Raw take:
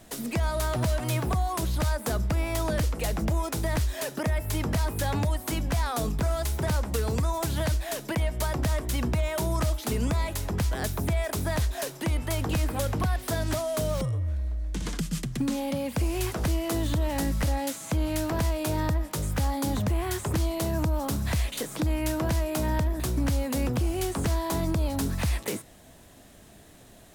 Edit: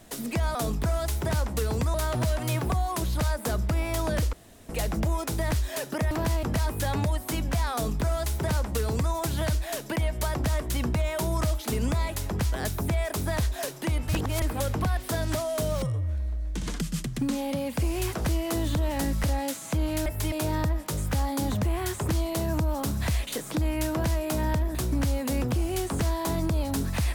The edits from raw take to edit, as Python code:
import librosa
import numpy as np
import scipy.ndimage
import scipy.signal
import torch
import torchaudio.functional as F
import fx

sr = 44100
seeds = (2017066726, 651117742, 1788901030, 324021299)

y = fx.edit(x, sr, fx.insert_room_tone(at_s=2.94, length_s=0.36),
    fx.swap(start_s=4.36, length_s=0.26, other_s=18.25, other_length_s=0.32),
    fx.duplicate(start_s=5.92, length_s=1.39, to_s=0.55),
    fx.reverse_span(start_s=12.28, length_s=0.33), tone=tone)